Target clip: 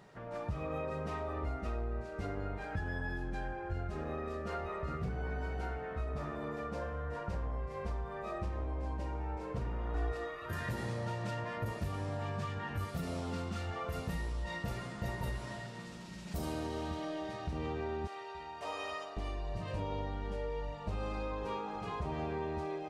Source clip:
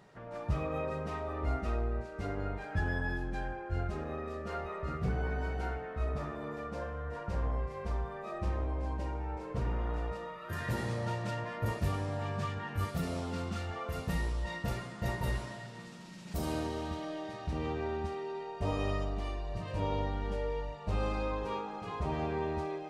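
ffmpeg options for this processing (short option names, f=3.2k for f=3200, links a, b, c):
-filter_complex "[0:a]asettb=1/sr,asplit=3[a][b][c];[a]atrim=end=18.074[d];[b]atrim=start=18.07:end=19.17,asetpts=PTS-STARTPTS,afade=t=in:d=0.004:c=qsin,afade=t=out:st=1.096:d=0.004:c=qsin,highpass=770[e];[c]atrim=start=19.166[f];[d][e]acrossfade=d=0.004:c1=hsin:c2=qsin[g];[g][f]acrossfade=d=0.004:c1=qsin:c2=hsin,asplit=2[h][i];[i]adelay=874.6,volume=-24dB,highshelf=f=4k:g=-19.7[j];[h][j]amix=inputs=2:normalize=0,acompressor=threshold=-35dB:ratio=5,asettb=1/sr,asplit=3[k][l][m];[k]atrim=end=9.944[n];[l]atrim=start=9.94:end=10.46,asetpts=PTS-STARTPTS,afade=t=in:d=0.004:c=qsin,afade=t=out:st=0.516:d=0.004:c=qsin,aecho=1:1:2.7:0.86,atrim=end_sample=22932[o];[m]atrim=start=10.456[p];[n][o]acrossfade=d=0.004:c1=hsin:c2=qsin[q];[q][p]acrossfade=d=0.004:c1=qsin:c2=hsin,volume=1dB"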